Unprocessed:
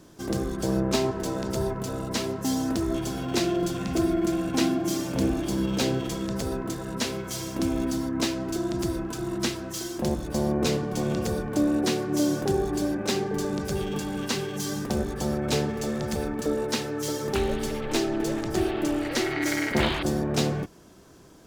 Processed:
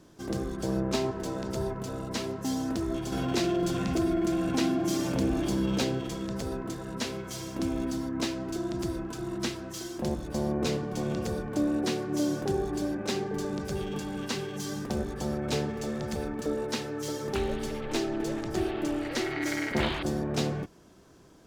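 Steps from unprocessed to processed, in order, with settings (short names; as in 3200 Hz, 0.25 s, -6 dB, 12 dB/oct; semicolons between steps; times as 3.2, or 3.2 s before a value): high shelf 8800 Hz -6 dB; 3.12–5.84 fast leveller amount 50%; gain -4 dB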